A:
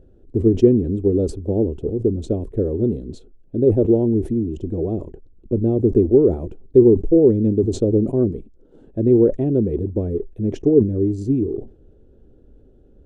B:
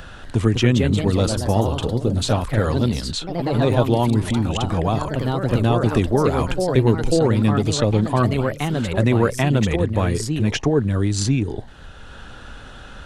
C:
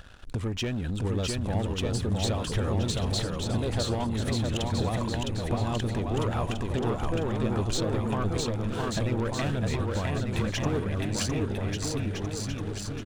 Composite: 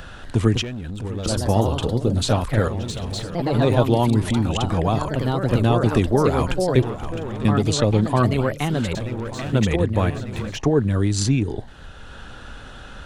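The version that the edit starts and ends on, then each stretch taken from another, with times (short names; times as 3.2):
B
0.62–1.26 from C
2.68–3.35 from C
6.82–7.45 from C
8.95–9.53 from C
10.1–10.57 from C
not used: A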